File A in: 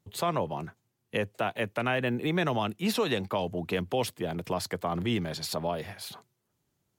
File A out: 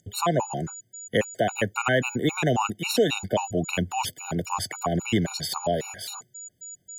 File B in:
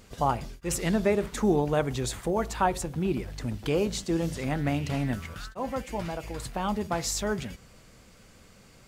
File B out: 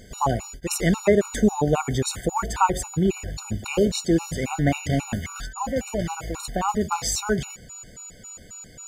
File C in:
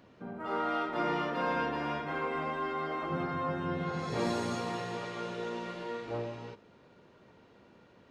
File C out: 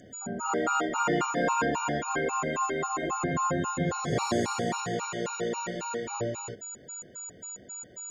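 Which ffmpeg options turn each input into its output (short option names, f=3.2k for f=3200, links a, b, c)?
-af "aeval=exprs='val(0)+0.00562*sin(2*PI*6900*n/s)':c=same,afftfilt=real='re*gt(sin(2*PI*3.7*pts/sr)*(1-2*mod(floor(b*sr/1024/740),2)),0)':imag='im*gt(sin(2*PI*3.7*pts/sr)*(1-2*mod(floor(b*sr/1024/740),2)),0)':win_size=1024:overlap=0.75,volume=8dB"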